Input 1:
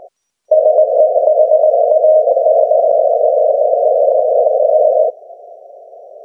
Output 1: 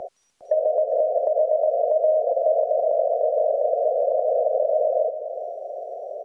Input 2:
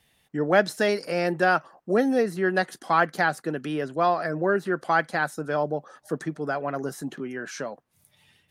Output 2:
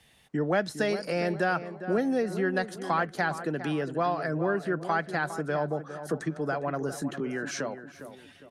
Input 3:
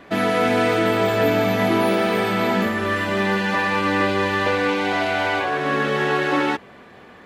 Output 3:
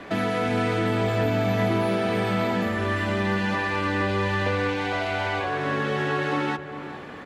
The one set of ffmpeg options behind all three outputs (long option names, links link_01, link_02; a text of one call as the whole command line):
ffmpeg -i in.wav -filter_complex "[0:a]lowpass=11000,acrossover=split=130[link_01][link_02];[link_02]acompressor=threshold=-37dB:ratio=2[link_03];[link_01][link_03]amix=inputs=2:normalize=0,asplit=2[link_04][link_05];[link_05]adelay=407,lowpass=frequency=1900:poles=1,volume=-11dB,asplit=2[link_06][link_07];[link_07]adelay=407,lowpass=frequency=1900:poles=1,volume=0.42,asplit=2[link_08][link_09];[link_09]adelay=407,lowpass=frequency=1900:poles=1,volume=0.42,asplit=2[link_10][link_11];[link_11]adelay=407,lowpass=frequency=1900:poles=1,volume=0.42[link_12];[link_06][link_08][link_10][link_12]amix=inputs=4:normalize=0[link_13];[link_04][link_13]amix=inputs=2:normalize=0,volume=4.5dB" out.wav